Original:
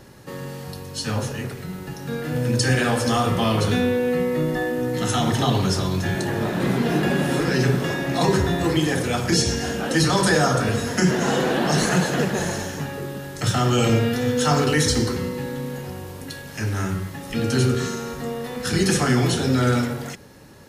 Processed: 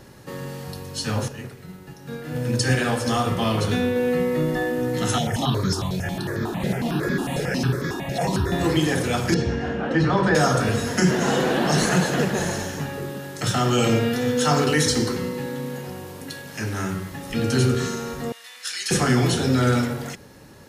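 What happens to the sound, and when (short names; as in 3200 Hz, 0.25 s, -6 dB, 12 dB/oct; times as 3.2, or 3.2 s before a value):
1.28–3.96 upward expander, over -34 dBFS
5.18–8.52 step phaser 11 Hz 300–2800 Hz
9.34–10.35 LPF 2100 Hz
13.09–17.12 HPF 120 Hz
18.32–18.91 Butterworth band-pass 5100 Hz, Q 0.56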